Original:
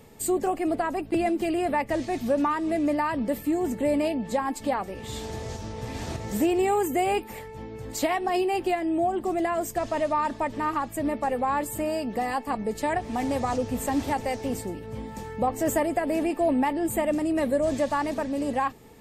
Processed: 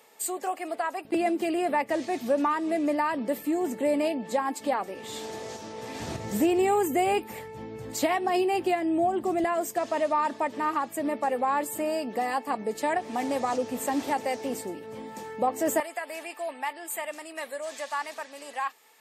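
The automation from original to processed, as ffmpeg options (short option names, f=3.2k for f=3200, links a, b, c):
-af "asetnsamples=n=441:p=0,asendcmd='1.05 highpass f 270;6 highpass f 110;9.44 highpass f 270;15.8 highpass f 1100',highpass=660"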